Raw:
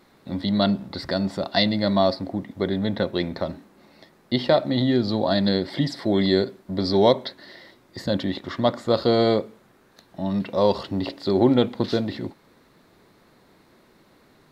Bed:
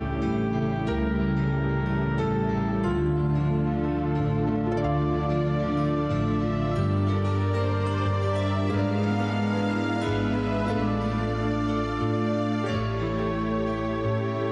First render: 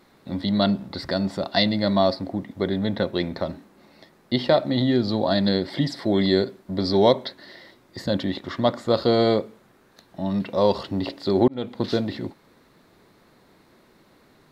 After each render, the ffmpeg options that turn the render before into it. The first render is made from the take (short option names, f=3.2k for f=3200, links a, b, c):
-filter_complex "[0:a]asplit=2[a][b];[a]atrim=end=11.48,asetpts=PTS-STARTPTS,afade=t=out:st=11.476:d=0.004:c=hsin[c];[b]atrim=start=11.48,asetpts=PTS-STARTPTS,afade=t=in:d=0.4[d];[c][d]concat=n=2:v=0:a=1"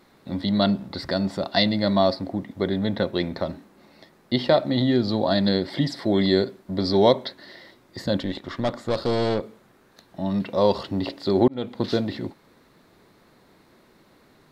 -filter_complex "[0:a]asettb=1/sr,asplit=3[a][b][c];[a]atrim=end=8.204[d];[b]atrim=start=8.2:end=9.43,asetpts=PTS-STARTPTS,afade=t=in:d=0.004:c=qsin,afade=t=out:st=1.226:d=0.004:c=qsin,aeval=exprs='(tanh(7.08*val(0)+0.5)-tanh(0.5))/7.08':c=same[e];[c]atrim=start=9.426[f];[d][e]acrossfade=d=0.004:c1=hsin:c2=qsin[g];[g][f]acrossfade=d=0.004:c1=qsin:c2=hsin"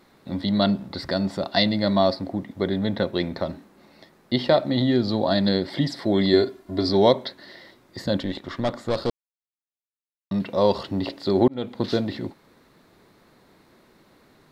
-filter_complex "[0:a]asettb=1/sr,asplit=3[a][b][c];[a]atrim=end=6.334[d];[b]atrim=start=6.33:end=6.89,asetpts=PTS-STARTPTS,afade=t=in:d=0.004:c=qsin,afade=t=out:st=0.556:d=0.004:c=qsin,aecho=1:1:2.9:0.65,atrim=end_sample=24696[e];[c]atrim=start=6.886[f];[d][e]acrossfade=d=0.004:c1=hsin:c2=qsin[g];[g][f]acrossfade=d=0.004:c1=qsin:c2=hsin,asplit=3[h][i][j];[h]atrim=end=9.1,asetpts=PTS-STARTPTS,afade=t=out:st=9.096:d=0.004:c=hsin[k];[i]atrim=start=9.1:end=10.31,asetpts=PTS-STARTPTS,volume=0[l];[j]atrim=start=10.31,asetpts=PTS-STARTPTS,afade=t=in:d=0.004:c=hsin[m];[k][l][m]concat=n=3:v=0:a=1"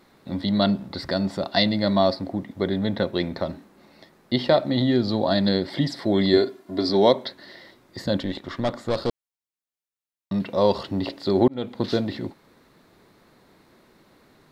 -filter_complex "[0:a]asettb=1/sr,asplit=3[a][b][c];[a]atrim=end=6.374[d];[b]atrim=start=6.37:end=7.26,asetpts=PTS-STARTPTS,afade=t=in:d=0.004:c=qsin,afade=t=out:st=0.886:d=0.004:c=qsin,highpass=150[e];[c]atrim=start=7.256[f];[d][e]acrossfade=d=0.004:c1=hsin:c2=qsin[g];[g][f]acrossfade=d=0.004:c1=qsin:c2=hsin"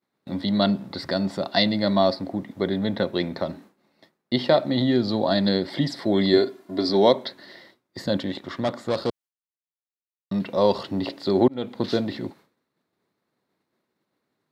-af "highpass=110,agate=range=-33dB:threshold=-43dB:ratio=3:detection=peak"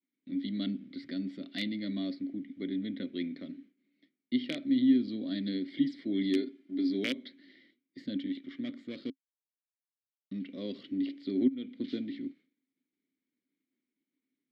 -filter_complex "[0:a]aeval=exprs='(mod(2.11*val(0)+1,2)-1)/2.11':c=same,asplit=3[a][b][c];[a]bandpass=f=270:t=q:w=8,volume=0dB[d];[b]bandpass=f=2.29k:t=q:w=8,volume=-6dB[e];[c]bandpass=f=3.01k:t=q:w=8,volume=-9dB[f];[d][e][f]amix=inputs=3:normalize=0"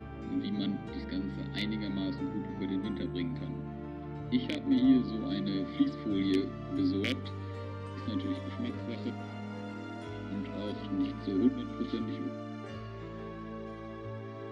-filter_complex "[1:a]volume=-15.5dB[a];[0:a][a]amix=inputs=2:normalize=0"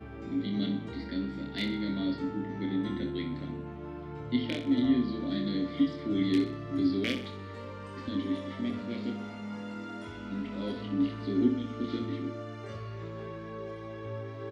-filter_complex "[0:a]asplit=2[a][b];[b]adelay=25,volume=-5dB[c];[a][c]amix=inputs=2:normalize=0,aecho=1:1:63|126|189|252|315:0.316|0.142|0.064|0.0288|0.013"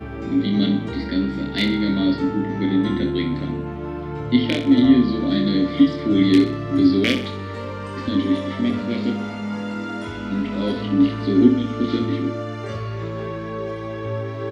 -af "volume=12dB"